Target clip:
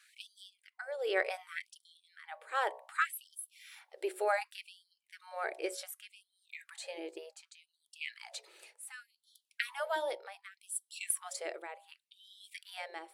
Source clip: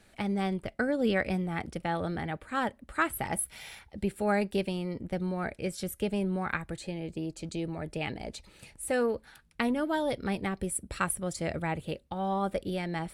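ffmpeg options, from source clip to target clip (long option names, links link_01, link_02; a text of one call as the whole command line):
ffmpeg -i in.wav -af "bandreject=frequency=61.72:width_type=h:width=4,bandreject=frequency=123.44:width_type=h:width=4,bandreject=frequency=185.16:width_type=h:width=4,bandreject=frequency=246.88:width_type=h:width=4,bandreject=frequency=308.6:width_type=h:width=4,bandreject=frequency=370.32:width_type=h:width=4,bandreject=frequency=432.04:width_type=h:width=4,bandreject=frequency=493.76:width_type=h:width=4,bandreject=frequency=555.48:width_type=h:width=4,bandreject=frequency=617.2:width_type=h:width=4,bandreject=frequency=678.92:width_type=h:width=4,bandreject=frequency=740.64:width_type=h:width=4,bandreject=frequency=802.36:width_type=h:width=4,bandreject=frequency=864.08:width_type=h:width=4,bandreject=frequency=925.8:width_type=h:width=4,bandreject=frequency=987.52:width_type=h:width=4,bandreject=frequency=1049.24:width_type=h:width=4,bandreject=frequency=1110.96:width_type=h:width=4,tremolo=f=0.72:d=0.77,afftfilt=real='re*gte(b*sr/1024,310*pow(3100/310,0.5+0.5*sin(2*PI*0.67*pts/sr)))':imag='im*gte(b*sr/1024,310*pow(3100/310,0.5+0.5*sin(2*PI*0.67*pts/sr)))':win_size=1024:overlap=0.75" out.wav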